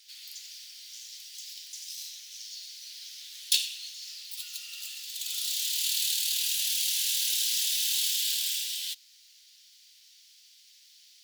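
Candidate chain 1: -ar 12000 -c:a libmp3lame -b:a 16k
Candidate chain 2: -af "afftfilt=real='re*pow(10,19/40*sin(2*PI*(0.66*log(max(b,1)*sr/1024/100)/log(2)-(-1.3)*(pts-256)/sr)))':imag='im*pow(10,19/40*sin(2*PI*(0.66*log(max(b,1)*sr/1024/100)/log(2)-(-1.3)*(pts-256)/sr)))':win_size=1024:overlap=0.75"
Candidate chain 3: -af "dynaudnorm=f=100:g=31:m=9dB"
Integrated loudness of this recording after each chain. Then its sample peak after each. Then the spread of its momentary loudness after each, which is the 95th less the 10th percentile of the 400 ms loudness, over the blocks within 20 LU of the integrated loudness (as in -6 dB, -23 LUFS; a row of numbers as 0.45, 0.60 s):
-32.0, -23.5, -19.0 LUFS; -13.0, -4.5, -2.5 dBFS; 16, 18, 18 LU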